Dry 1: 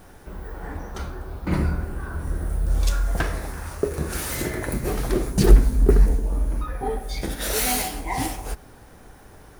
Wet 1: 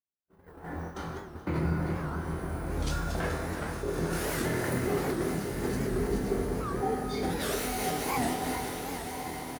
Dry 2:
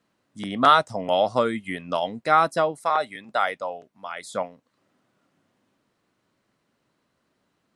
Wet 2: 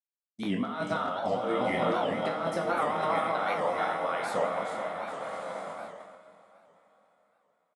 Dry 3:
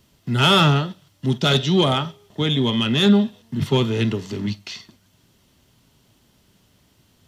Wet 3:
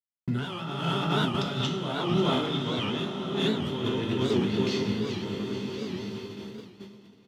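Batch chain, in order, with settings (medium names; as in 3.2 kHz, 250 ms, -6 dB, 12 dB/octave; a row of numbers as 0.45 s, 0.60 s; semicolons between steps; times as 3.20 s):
backward echo that repeats 214 ms, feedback 68%, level -7 dB; high-pass 120 Hz 12 dB/octave; doubling 24 ms -7 dB; compressor with a negative ratio -25 dBFS, ratio -1; treble shelf 2.7 kHz -7.5 dB; echo that smears into a reverb 1178 ms, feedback 40%, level -7.5 dB; gate -35 dBFS, range -57 dB; two-slope reverb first 0.59 s, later 4.5 s, from -18 dB, DRR 2 dB; warped record 78 rpm, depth 160 cents; trim -5.5 dB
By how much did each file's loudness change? -7.5 LU, -7.0 LU, -9.5 LU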